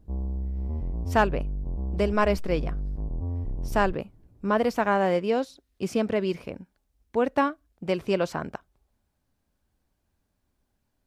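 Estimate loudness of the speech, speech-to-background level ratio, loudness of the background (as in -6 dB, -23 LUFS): -27.0 LUFS, 6.5 dB, -33.5 LUFS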